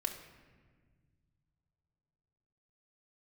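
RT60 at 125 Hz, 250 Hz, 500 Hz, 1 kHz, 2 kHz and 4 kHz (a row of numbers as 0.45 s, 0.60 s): 3.7 s, 2.6 s, 1.7 s, 1.4 s, 1.4 s, 0.95 s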